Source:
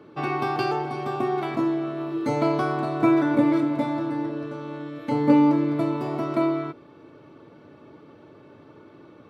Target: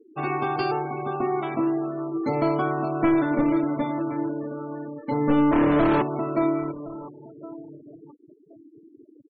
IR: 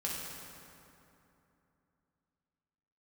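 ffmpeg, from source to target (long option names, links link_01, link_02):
-filter_complex "[0:a]asplit=3[link_01][link_02][link_03];[link_01]afade=type=out:start_time=5.51:duration=0.02[link_04];[link_02]asplit=2[link_05][link_06];[link_06]highpass=frequency=720:poles=1,volume=36dB,asoftclip=type=tanh:threshold=-11.5dB[link_07];[link_05][link_07]amix=inputs=2:normalize=0,lowpass=frequency=1100:poles=1,volume=-6dB,afade=type=in:start_time=5.51:duration=0.02,afade=type=out:start_time=6.01:duration=0.02[link_08];[link_03]afade=type=in:start_time=6.01:duration=0.02[link_09];[link_04][link_08][link_09]amix=inputs=3:normalize=0,asplit=2[link_10][link_11];[link_11]adelay=1066,lowpass=frequency=4300:poles=1,volume=-17dB,asplit=2[link_12][link_13];[link_13]adelay=1066,lowpass=frequency=4300:poles=1,volume=0.28,asplit=2[link_14][link_15];[link_15]adelay=1066,lowpass=frequency=4300:poles=1,volume=0.28[link_16];[link_10][link_12][link_14][link_16]amix=inputs=4:normalize=0,aeval=exprs='clip(val(0),-1,0.133)':channel_layout=same,bandreject=frequency=60:width_type=h:width=6,bandreject=frequency=120:width_type=h:width=6,bandreject=frequency=180:width_type=h:width=6,bandreject=frequency=240:width_type=h:width=6,bandreject=frequency=300:width_type=h:width=6,afftfilt=real='re*gte(hypot(re,im),0.0224)':imag='im*gte(hypot(re,im),0.0224)':win_size=1024:overlap=0.75"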